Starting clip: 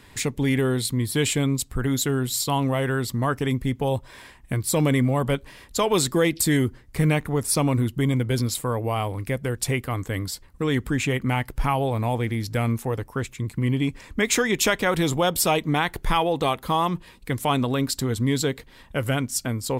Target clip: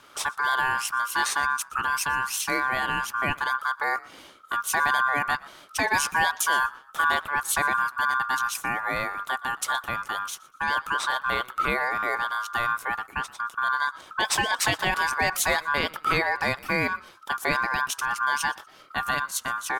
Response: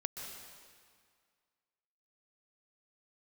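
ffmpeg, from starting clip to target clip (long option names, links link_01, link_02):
-filter_complex "[0:a]asplit=3[link_01][link_02][link_03];[link_02]adelay=120,afreqshift=46,volume=-23dB[link_04];[link_03]adelay=240,afreqshift=92,volume=-33.2dB[link_05];[link_01][link_04][link_05]amix=inputs=3:normalize=0,aeval=exprs='val(0)*sin(2*PI*1300*n/s)':channel_layout=same"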